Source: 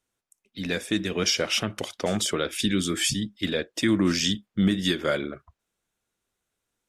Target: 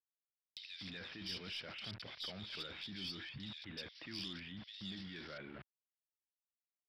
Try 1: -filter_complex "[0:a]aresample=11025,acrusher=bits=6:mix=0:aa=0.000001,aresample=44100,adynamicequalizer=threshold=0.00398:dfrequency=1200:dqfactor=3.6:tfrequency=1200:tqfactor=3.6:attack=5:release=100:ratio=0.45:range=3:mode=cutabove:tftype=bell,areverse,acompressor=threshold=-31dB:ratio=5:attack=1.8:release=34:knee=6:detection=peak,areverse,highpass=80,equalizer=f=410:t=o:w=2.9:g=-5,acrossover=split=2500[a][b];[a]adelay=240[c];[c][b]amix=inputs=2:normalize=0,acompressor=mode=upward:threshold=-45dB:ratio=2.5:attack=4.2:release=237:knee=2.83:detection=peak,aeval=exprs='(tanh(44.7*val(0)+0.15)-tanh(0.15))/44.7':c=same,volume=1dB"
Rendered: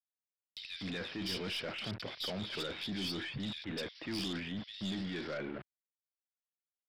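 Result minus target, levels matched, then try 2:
compressor: peak gain reduction -7 dB; 500 Hz band +5.5 dB
-filter_complex "[0:a]aresample=11025,acrusher=bits=6:mix=0:aa=0.000001,aresample=44100,adynamicequalizer=threshold=0.00398:dfrequency=1200:dqfactor=3.6:tfrequency=1200:tqfactor=3.6:attack=5:release=100:ratio=0.45:range=3:mode=cutabove:tftype=bell,areverse,acompressor=threshold=-39.5dB:ratio=5:attack=1.8:release=34:knee=6:detection=peak,areverse,highpass=80,equalizer=f=410:t=o:w=2.9:g=-13.5,acrossover=split=2500[a][b];[a]adelay=240[c];[c][b]amix=inputs=2:normalize=0,acompressor=mode=upward:threshold=-45dB:ratio=2.5:attack=4.2:release=237:knee=2.83:detection=peak,aeval=exprs='(tanh(44.7*val(0)+0.15)-tanh(0.15))/44.7':c=same,volume=1dB"

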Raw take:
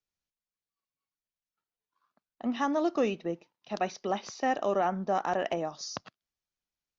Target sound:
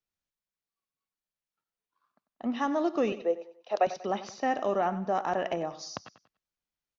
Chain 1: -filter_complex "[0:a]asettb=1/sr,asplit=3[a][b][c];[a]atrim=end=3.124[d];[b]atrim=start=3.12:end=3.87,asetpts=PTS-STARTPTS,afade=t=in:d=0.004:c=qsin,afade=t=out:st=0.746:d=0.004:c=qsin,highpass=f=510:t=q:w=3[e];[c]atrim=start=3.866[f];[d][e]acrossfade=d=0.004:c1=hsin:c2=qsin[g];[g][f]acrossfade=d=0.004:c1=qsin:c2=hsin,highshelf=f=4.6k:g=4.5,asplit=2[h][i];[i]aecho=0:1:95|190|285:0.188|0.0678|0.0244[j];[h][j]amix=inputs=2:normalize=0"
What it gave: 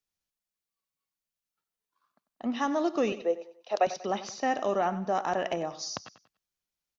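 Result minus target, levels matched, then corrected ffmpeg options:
8000 Hz band +6.0 dB
-filter_complex "[0:a]asettb=1/sr,asplit=3[a][b][c];[a]atrim=end=3.124[d];[b]atrim=start=3.12:end=3.87,asetpts=PTS-STARTPTS,afade=t=in:d=0.004:c=qsin,afade=t=out:st=0.746:d=0.004:c=qsin,highpass=f=510:t=q:w=3[e];[c]atrim=start=3.866[f];[d][e]acrossfade=d=0.004:c1=hsin:c2=qsin[g];[g][f]acrossfade=d=0.004:c1=qsin:c2=hsin,highshelf=f=4.6k:g=-5,asplit=2[h][i];[i]aecho=0:1:95|190|285:0.188|0.0678|0.0244[j];[h][j]amix=inputs=2:normalize=0"

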